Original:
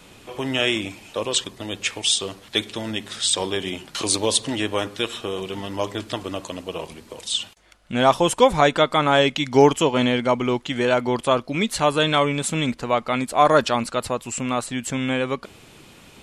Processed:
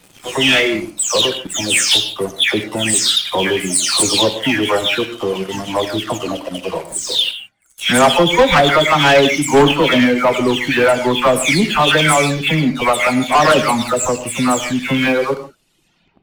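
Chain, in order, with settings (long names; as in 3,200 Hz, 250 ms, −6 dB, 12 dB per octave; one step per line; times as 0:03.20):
every frequency bin delayed by itself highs early, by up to 349 ms
reverb reduction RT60 1.5 s
dynamic equaliser 2,100 Hz, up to +5 dB, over −37 dBFS, Q 1.6
leveller curve on the samples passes 3
reverb whose tail is shaped and stops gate 190 ms flat, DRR 9 dB
level −1 dB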